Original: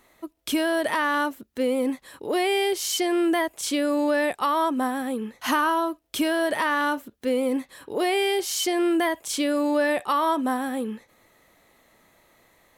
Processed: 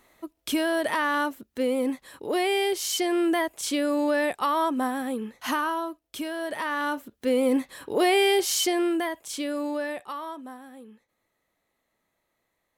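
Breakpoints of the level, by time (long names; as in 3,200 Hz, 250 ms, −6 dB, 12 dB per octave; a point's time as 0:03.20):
0:05.13 −1.5 dB
0:06.30 −9 dB
0:07.53 +2.5 dB
0:08.52 +2.5 dB
0:09.10 −6 dB
0:09.65 −6 dB
0:10.60 −17.5 dB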